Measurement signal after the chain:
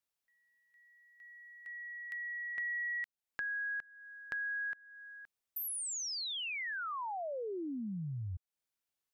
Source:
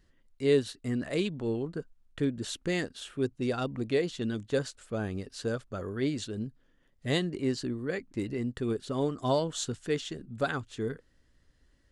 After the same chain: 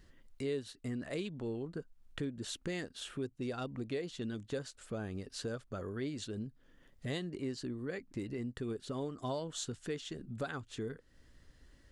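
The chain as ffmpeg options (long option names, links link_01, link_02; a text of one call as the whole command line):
ffmpeg -i in.wav -af "acompressor=threshold=-48dB:ratio=2.5,volume=5dB" out.wav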